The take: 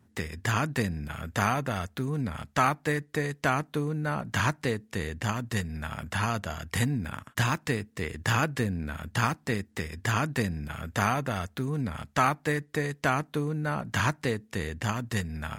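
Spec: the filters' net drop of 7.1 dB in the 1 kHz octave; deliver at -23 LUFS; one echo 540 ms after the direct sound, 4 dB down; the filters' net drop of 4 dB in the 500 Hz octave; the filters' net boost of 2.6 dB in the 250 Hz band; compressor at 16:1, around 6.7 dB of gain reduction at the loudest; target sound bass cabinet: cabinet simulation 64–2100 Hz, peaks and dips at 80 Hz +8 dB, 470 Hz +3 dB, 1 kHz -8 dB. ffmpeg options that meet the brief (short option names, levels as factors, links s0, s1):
-af "equalizer=f=250:t=o:g=5,equalizer=f=500:t=o:g=-7,equalizer=f=1000:t=o:g=-5,acompressor=threshold=0.0398:ratio=16,highpass=f=64:w=0.5412,highpass=f=64:w=1.3066,equalizer=f=80:t=q:w=4:g=8,equalizer=f=470:t=q:w=4:g=3,equalizer=f=1000:t=q:w=4:g=-8,lowpass=f=2100:w=0.5412,lowpass=f=2100:w=1.3066,aecho=1:1:540:0.631,volume=3.16"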